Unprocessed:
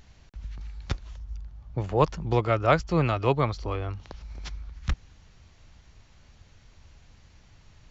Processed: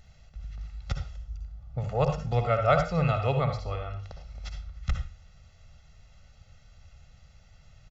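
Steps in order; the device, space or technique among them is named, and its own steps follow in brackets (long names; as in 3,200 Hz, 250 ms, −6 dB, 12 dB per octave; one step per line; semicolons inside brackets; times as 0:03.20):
microphone above a desk (comb filter 1.5 ms, depth 90%; convolution reverb RT60 0.35 s, pre-delay 54 ms, DRR 5.5 dB)
level −6 dB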